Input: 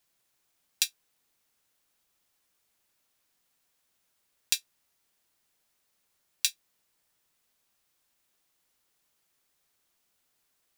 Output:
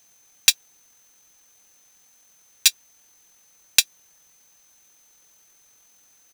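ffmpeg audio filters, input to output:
-af "aeval=exprs='val(0)+0.000251*sin(2*PI*6200*n/s)':c=same,atempo=1.7,aeval=exprs='0.891*sin(PI/2*3.55*val(0)/0.891)':c=same"

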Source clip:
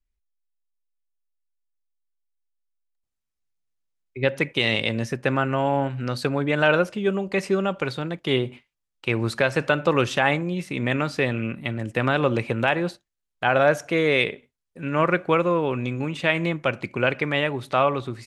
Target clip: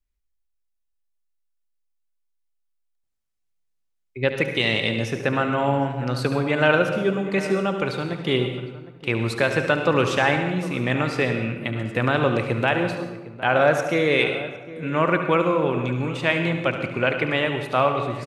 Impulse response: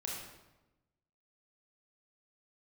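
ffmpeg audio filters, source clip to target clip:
-filter_complex "[0:a]asplit=2[s0][s1];[s1]adelay=758,volume=0.158,highshelf=f=4000:g=-17.1[s2];[s0][s2]amix=inputs=2:normalize=0,asplit=2[s3][s4];[1:a]atrim=start_sample=2205,adelay=72[s5];[s4][s5]afir=irnorm=-1:irlink=0,volume=0.473[s6];[s3][s6]amix=inputs=2:normalize=0"

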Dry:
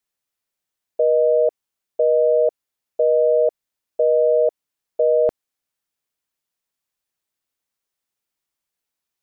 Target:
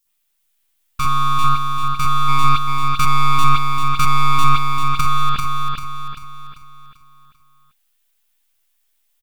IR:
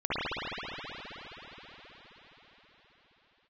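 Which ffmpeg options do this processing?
-filter_complex "[0:a]highpass=f=730:t=q:w=1.7,aeval=exprs='abs(val(0))':c=same,crystalizer=i=6:c=0[s0];[1:a]atrim=start_sample=2205,atrim=end_sample=4410[s1];[s0][s1]afir=irnorm=-1:irlink=0,asettb=1/sr,asplit=3[s2][s3][s4];[s2]atrim=end=2.284[s5];[s3]atrim=start=2.28:end=5.01,asetpts=PTS-STARTPTS,afade=t=in:d=0.004:c=qsin,afade=t=out:st=2.726:d=0.004:c=qsin,acontrast=72[s6];[s4]atrim=start=5.006[s7];[s5][s6]acrossfade=d=0.004:c1=hsin:c2=qsin[s8];[s8][s7]acrossfade=d=0.004:c1=qsin:c2=hsin,alimiter=limit=0.398:level=0:latency=1:release=182,aecho=1:1:392|784|1176|1568|1960|2352:0.631|0.278|0.122|0.0537|0.0236|0.0104"

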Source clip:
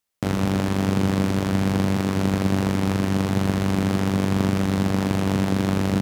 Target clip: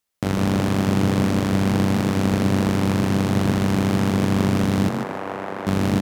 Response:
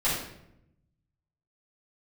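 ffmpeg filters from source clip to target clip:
-filter_complex "[0:a]asettb=1/sr,asplit=3[s0][s1][s2];[s0]atrim=end=4.894[s3];[s1]atrim=start=4.89:end=5.67,asetpts=PTS-STARTPTS,afade=t=in:d=0.004:c=qsin,afade=t=out:st=0.776:d=0.004:c=qsin,acrossover=split=410 2100:gain=0.0794 1 0.126[s4][s5][s6];[s4][s5][s6]amix=inputs=3:normalize=0[s7];[s2]atrim=start=5.666[s8];[s3][s7]acrossfade=d=0.004:c1=hsin:c2=qsin[s9];[s9][s8]acrossfade=d=0.004:c1=qsin:c2=hsin,asplit=5[s10][s11][s12][s13][s14];[s11]adelay=146,afreqshift=31,volume=0.473[s15];[s12]adelay=292,afreqshift=62,volume=0.141[s16];[s13]adelay=438,afreqshift=93,volume=0.0427[s17];[s14]adelay=584,afreqshift=124,volume=0.0127[s18];[s10][s15][s16][s17][s18]amix=inputs=5:normalize=0,volume=1.12"

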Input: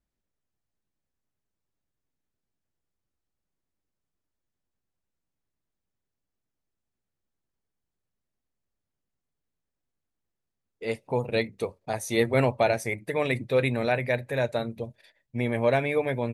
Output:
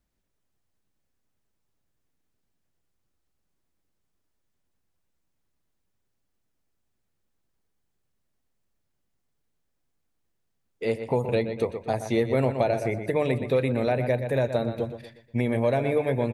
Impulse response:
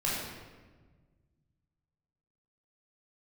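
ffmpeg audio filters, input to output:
-filter_complex "[0:a]asplit=2[s0][s1];[s1]adelay=120,lowpass=f=4100:p=1,volume=0.282,asplit=2[s2][s3];[s3]adelay=120,lowpass=f=4100:p=1,volume=0.41,asplit=2[s4][s5];[s5]adelay=120,lowpass=f=4100:p=1,volume=0.41,asplit=2[s6][s7];[s7]adelay=120,lowpass=f=4100:p=1,volume=0.41[s8];[s2][s4][s6][s8]amix=inputs=4:normalize=0[s9];[s0][s9]amix=inputs=2:normalize=0,acrossover=split=830|4500[s10][s11][s12];[s10]acompressor=threshold=0.0447:ratio=4[s13];[s11]acompressor=threshold=0.00631:ratio=4[s14];[s12]acompressor=threshold=0.00112:ratio=4[s15];[s13][s14][s15]amix=inputs=3:normalize=0,volume=2"

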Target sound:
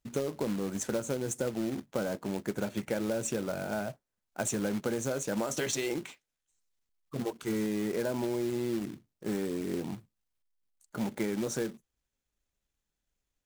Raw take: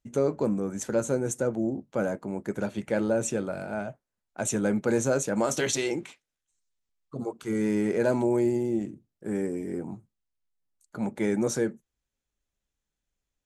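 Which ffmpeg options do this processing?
-af "acompressor=threshold=0.0398:ratio=12,acrusher=bits=3:mode=log:mix=0:aa=0.000001"

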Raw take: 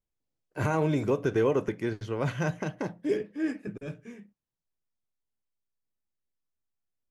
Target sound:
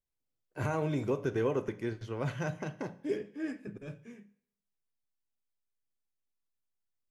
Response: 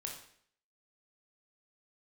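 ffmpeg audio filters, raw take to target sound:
-filter_complex "[0:a]asplit=2[s0][s1];[1:a]atrim=start_sample=2205,adelay=8[s2];[s1][s2]afir=irnorm=-1:irlink=0,volume=0.299[s3];[s0][s3]amix=inputs=2:normalize=0,volume=0.531"

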